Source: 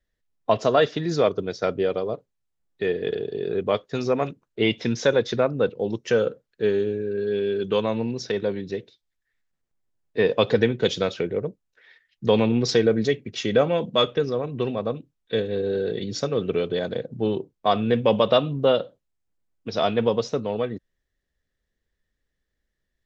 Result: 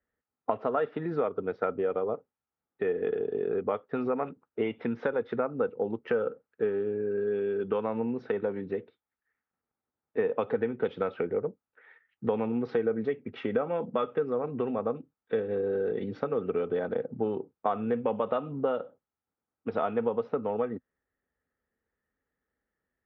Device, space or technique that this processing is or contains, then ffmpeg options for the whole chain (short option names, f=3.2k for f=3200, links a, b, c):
bass amplifier: -af "acompressor=threshold=-26dB:ratio=5,highpass=78,equalizer=f=130:t=q:w=4:g=-5,equalizer=f=250:t=q:w=4:g=6,equalizer=f=460:t=q:w=4:g=6,equalizer=f=830:t=q:w=4:g=9,equalizer=f=1.3k:t=q:w=4:g=10,lowpass=f=2.4k:w=0.5412,lowpass=f=2.4k:w=1.3066,volume=-4dB"